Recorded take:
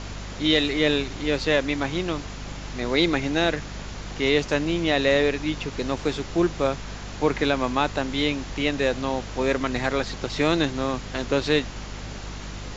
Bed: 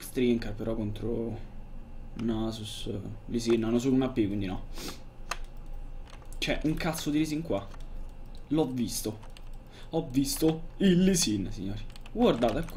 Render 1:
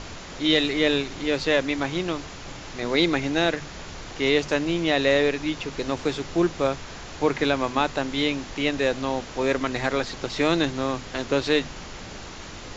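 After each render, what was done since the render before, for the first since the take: hum notches 50/100/150/200/250 Hz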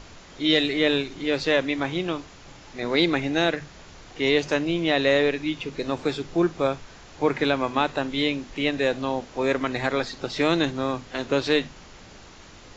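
noise print and reduce 8 dB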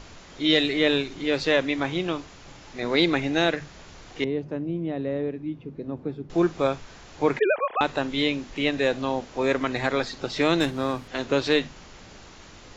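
4.24–6.30 s: band-pass filter 160 Hz, Q 0.86; 7.39–7.81 s: formants replaced by sine waves; 10.60–11.08 s: sliding maximum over 3 samples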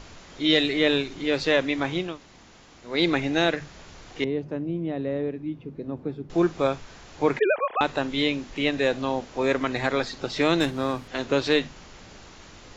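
2.10–2.94 s: room tone, crossfade 0.24 s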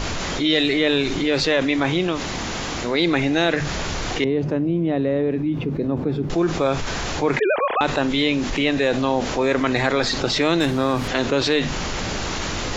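level flattener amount 70%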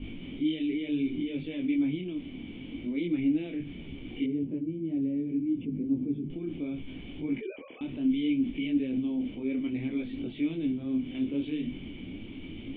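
cascade formant filter i; detune thickener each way 24 cents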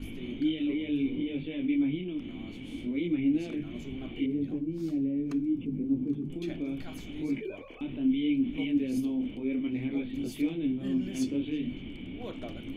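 add bed -17 dB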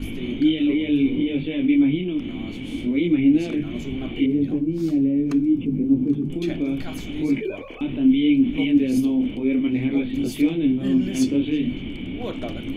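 trim +10 dB

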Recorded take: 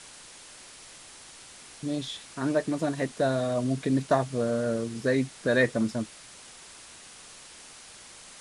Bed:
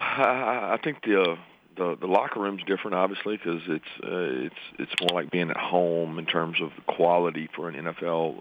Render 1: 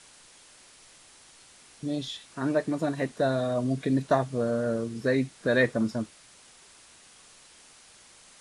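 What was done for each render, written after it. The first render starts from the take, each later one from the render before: noise print and reduce 6 dB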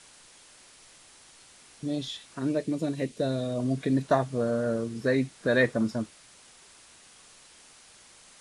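2.39–3.60 s: high-order bell 1.1 kHz -10 dB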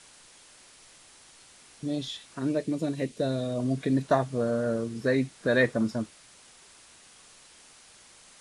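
no audible change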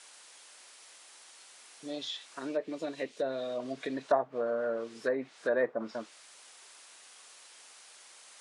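high-pass 520 Hz 12 dB/octave; low-pass that closes with the level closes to 980 Hz, closed at -25.5 dBFS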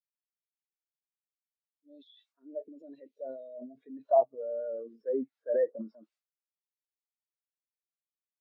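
transient shaper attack -2 dB, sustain +12 dB; spectral contrast expander 2.5:1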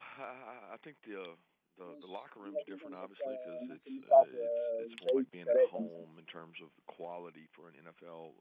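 add bed -24 dB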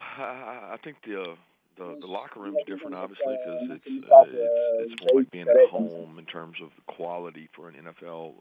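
trim +11.5 dB

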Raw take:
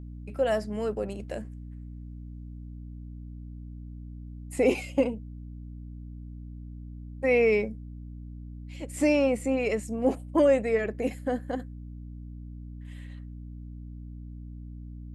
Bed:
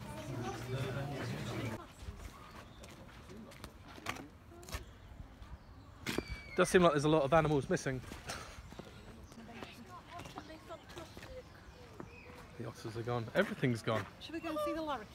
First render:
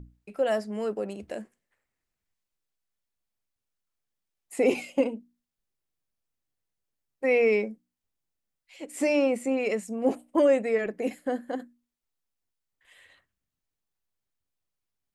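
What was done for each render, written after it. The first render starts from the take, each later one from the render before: hum notches 60/120/180/240/300 Hz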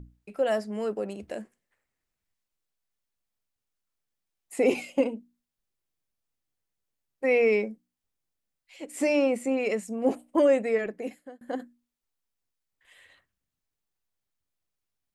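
10.75–11.41 s: fade out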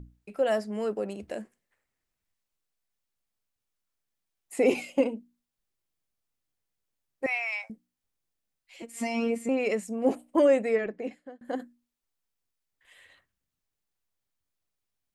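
7.26–7.70 s: steep high-pass 680 Hz 72 dB/octave; 8.82–9.49 s: robot voice 231 Hz; 10.76–11.45 s: distance through air 90 m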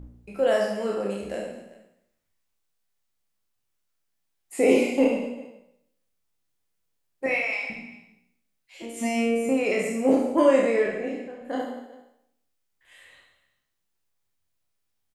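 spectral sustain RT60 0.71 s; reverse bouncing-ball echo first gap 30 ms, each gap 1.5×, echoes 5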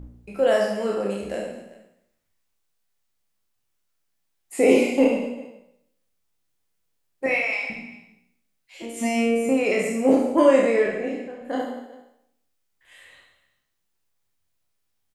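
trim +2.5 dB

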